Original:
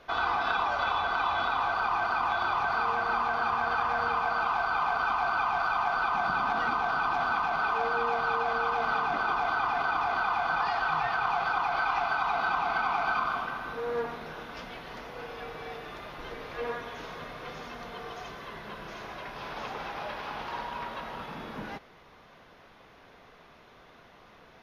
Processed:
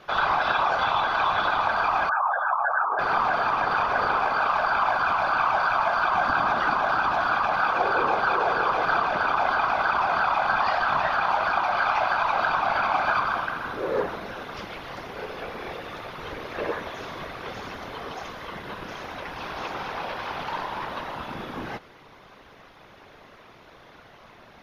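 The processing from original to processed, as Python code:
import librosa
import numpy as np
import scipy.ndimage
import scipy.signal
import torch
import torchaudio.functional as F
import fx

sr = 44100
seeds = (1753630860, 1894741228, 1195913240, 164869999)

y = fx.spec_expand(x, sr, power=2.8, at=(2.09, 2.99))
y = fx.whisperise(y, sr, seeds[0])
y = y * librosa.db_to_amplitude(5.0)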